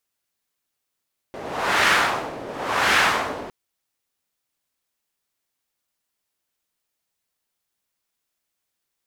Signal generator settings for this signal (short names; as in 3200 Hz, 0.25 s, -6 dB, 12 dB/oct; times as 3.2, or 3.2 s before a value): wind-like swept noise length 2.16 s, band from 510 Hz, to 1700 Hz, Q 1.2, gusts 2, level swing 17 dB